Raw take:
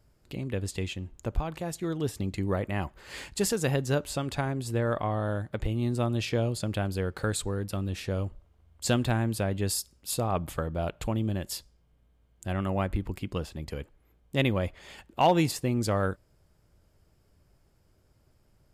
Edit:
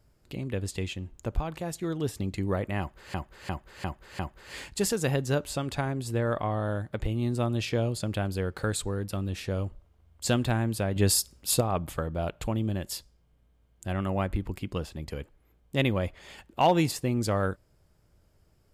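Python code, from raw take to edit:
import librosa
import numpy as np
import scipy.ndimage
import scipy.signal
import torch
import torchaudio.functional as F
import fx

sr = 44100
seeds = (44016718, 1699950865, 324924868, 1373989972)

y = fx.edit(x, sr, fx.repeat(start_s=2.79, length_s=0.35, count=5),
    fx.clip_gain(start_s=9.56, length_s=0.65, db=6.0), tone=tone)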